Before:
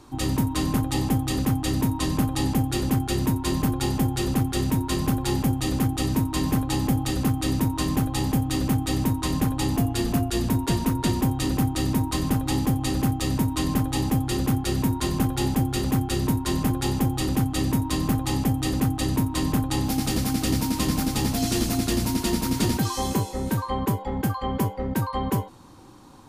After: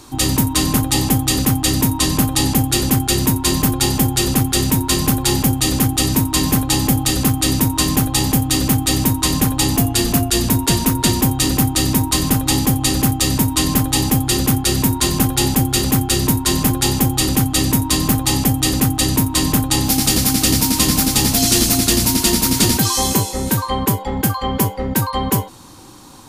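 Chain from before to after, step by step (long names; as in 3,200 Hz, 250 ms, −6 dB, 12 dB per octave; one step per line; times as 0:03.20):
high-shelf EQ 2,800 Hz +11 dB
level +6 dB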